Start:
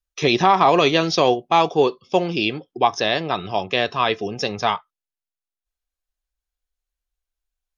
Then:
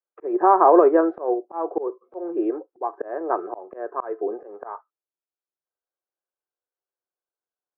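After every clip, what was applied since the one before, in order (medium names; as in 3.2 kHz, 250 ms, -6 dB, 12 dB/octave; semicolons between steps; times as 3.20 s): Chebyshev band-pass 340–1600 Hz, order 4; tilt EQ -4 dB/octave; slow attack 313 ms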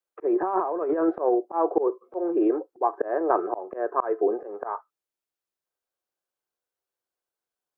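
compressor with a negative ratio -22 dBFS, ratio -1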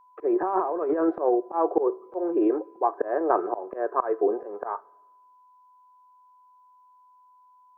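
whistle 1 kHz -55 dBFS; on a send at -21.5 dB: reverberation RT60 1.0 s, pre-delay 4 ms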